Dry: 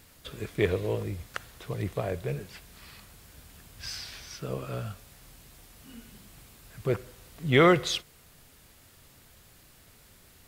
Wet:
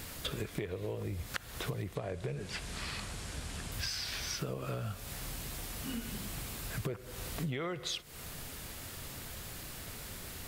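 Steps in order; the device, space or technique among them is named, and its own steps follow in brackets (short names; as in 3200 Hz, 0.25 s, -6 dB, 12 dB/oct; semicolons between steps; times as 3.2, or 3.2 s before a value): serial compression, leveller first (compressor 3:1, threshold -33 dBFS, peak gain reduction 13.5 dB; compressor 8:1, threshold -46 dBFS, peak gain reduction 18.5 dB); 1.95–3.72 LPF 9800 Hz 24 dB/oct; gain +11.5 dB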